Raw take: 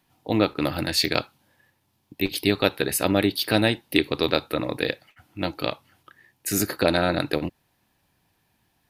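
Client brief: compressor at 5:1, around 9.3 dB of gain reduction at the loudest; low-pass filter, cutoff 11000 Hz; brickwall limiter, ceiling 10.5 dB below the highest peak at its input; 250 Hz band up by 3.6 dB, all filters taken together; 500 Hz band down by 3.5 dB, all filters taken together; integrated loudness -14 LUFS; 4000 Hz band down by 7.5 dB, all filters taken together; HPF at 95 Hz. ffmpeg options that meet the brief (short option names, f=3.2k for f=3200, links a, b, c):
-af "highpass=95,lowpass=11k,equalizer=f=250:t=o:g=7.5,equalizer=f=500:t=o:g=-7,equalizer=f=4k:t=o:g=-8.5,acompressor=threshold=-25dB:ratio=5,volume=20dB,alimiter=limit=-1dB:level=0:latency=1"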